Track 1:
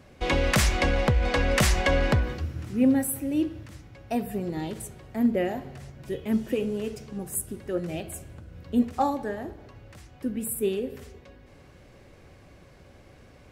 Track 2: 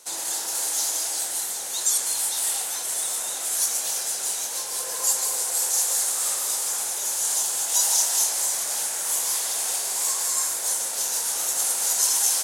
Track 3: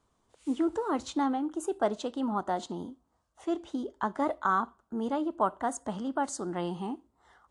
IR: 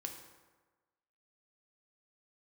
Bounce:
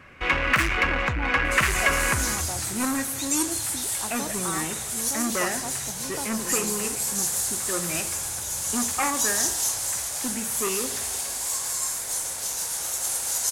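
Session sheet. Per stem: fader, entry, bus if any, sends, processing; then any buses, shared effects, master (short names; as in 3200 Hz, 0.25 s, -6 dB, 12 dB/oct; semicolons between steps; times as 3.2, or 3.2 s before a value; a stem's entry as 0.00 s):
-2.0 dB, 0.00 s, send -12.5 dB, soft clip -24 dBFS, distortion -10 dB; band shelf 1700 Hz +13 dB
-3.5 dB, 1.45 s, no send, dry
-7.0 dB, 0.00 s, no send, dry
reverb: on, RT60 1.3 s, pre-delay 3 ms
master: dry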